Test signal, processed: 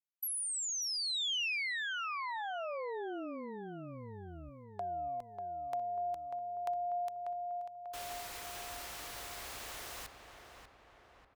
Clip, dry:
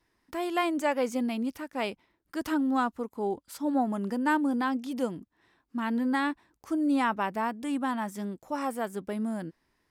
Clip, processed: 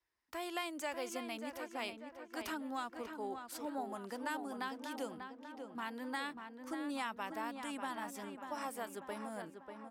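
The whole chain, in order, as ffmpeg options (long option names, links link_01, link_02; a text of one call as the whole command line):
ffmpeg -i in.wav -filter_complex "[0:a]equalizer=frequency=190:width=0.61:gain=-13,agate=range=-9dB:threshold=-55dB:ratio=16:detection=peak,acrossover=split=260|2800[link_01][link_02][link_03];[link_01]acompressor=threshold=-48dB:ratio=4[link_04];[link_02]acompressor=threshold=-36dB:ratio=4[link_05];[link_03]acompressor=threshold=-33dB:ratio=4[link_06];[link_04][link_05][link_06]amix=inputs=3:normalize=0,highpass=44,asplit=2[link_07][link_08];[link_08]adelay=592,lowpass=frequency=2400:poles=1,volume=-6.5dB,asplit=2[link_09][link_10];[link_10]adelay=592,lowpass=frequency=2400:poles=1,volume=0.55,asplit=2[link_11][link_12];[link_12]adelay=592,lowpass=frequency=2400:poles=1,volume=0.55,asplit=2[link_13][link_14];[link_14]adelay=592,lowpass=frequency=2400:poles=1,volume=0.55,asplit=2[link_15][link_16];[link_16]adelay=592,lowpass=frequency=2400:poles=1,volume=0.55,asplit=2[link_17][link_18];[link_18]adelay=592,lowpass=frequency=2400:poles=1,volume=0.55,asplit=2[link_19][link_20];[link_20]adelay=592,lowpass=frequency=2400:poles=1,volume=0.55[link_21];[link_09][link_11][link_13][link_15][link_17][link_19][link_21]amix=inputs=7:normalize=0[link_22];[link_07][link_22]amix=inputs=2:normalize=0,volume=-3.5dB" out.wav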